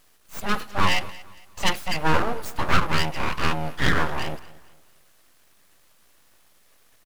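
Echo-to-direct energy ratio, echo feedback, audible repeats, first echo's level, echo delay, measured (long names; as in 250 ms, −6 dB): −19.5 dB, 35%, 2, −20.0 dB, 229 ms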